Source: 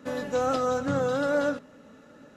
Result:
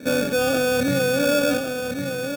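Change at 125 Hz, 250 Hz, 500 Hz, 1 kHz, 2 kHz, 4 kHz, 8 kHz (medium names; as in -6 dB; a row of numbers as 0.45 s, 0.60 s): +7.0 dB, +8.0 dB, +6.0 dB, +0.5 dB, +11.0 dB, +14.5 dB, +14.5 dB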